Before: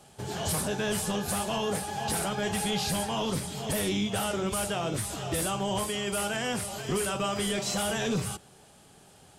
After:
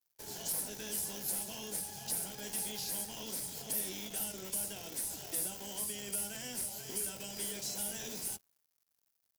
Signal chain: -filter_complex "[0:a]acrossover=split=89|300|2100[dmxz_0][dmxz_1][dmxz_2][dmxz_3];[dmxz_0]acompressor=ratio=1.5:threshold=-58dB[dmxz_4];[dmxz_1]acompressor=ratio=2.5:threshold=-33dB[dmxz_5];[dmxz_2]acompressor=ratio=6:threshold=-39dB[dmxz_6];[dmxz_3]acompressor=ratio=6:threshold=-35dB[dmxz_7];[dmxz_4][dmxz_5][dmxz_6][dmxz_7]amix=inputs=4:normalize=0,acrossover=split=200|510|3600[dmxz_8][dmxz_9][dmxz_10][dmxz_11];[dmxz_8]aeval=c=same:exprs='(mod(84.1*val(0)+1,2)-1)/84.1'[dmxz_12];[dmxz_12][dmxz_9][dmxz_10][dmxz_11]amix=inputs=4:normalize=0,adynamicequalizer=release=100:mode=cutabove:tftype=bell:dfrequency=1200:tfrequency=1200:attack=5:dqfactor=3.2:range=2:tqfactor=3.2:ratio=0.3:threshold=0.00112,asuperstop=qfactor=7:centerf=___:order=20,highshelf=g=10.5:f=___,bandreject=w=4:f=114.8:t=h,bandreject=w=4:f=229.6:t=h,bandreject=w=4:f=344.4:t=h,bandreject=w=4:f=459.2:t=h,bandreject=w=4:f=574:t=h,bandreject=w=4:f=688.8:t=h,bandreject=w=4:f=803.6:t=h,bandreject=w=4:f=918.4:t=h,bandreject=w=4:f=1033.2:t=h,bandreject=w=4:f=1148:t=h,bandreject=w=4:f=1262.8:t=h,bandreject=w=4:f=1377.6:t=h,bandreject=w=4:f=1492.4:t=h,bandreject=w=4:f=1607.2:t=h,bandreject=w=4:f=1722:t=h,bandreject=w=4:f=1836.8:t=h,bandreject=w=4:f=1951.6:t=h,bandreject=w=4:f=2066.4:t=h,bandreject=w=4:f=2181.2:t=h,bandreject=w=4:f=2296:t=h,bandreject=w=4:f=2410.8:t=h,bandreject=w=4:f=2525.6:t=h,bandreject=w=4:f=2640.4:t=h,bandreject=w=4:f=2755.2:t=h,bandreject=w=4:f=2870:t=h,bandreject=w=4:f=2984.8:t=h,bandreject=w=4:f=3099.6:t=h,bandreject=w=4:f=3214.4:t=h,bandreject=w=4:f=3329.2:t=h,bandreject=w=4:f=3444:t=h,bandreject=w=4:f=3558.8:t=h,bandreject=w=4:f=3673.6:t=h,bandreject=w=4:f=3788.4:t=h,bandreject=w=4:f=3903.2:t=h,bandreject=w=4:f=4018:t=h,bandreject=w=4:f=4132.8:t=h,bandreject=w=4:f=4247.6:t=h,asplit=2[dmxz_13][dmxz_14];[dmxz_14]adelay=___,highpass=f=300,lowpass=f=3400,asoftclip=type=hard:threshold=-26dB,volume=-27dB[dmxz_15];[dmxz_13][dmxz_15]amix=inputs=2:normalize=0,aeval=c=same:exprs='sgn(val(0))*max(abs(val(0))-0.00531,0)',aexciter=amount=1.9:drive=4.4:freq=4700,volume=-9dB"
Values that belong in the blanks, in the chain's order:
1200, 6900, 250